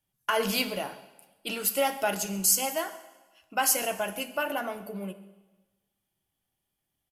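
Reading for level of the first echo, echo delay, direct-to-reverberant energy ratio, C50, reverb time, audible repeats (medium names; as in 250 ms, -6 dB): -21.5 dB, 137 ms, 11.5 dB, 13.5 dB, 1.2 s, 1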